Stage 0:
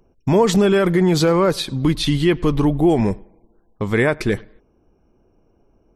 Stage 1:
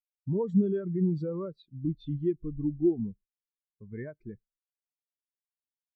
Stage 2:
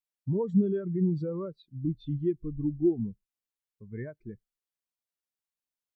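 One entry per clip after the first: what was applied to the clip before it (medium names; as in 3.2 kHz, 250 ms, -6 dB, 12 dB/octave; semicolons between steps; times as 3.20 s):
dynamic bell 520 Hz, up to -4 dB, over -25 dBFS, Q 0.97; spectral contrast expander 2.5:1; trim -8 dB
dynamic bell 120 Hz, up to +4 dB, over -47 dBFS, Q 3.7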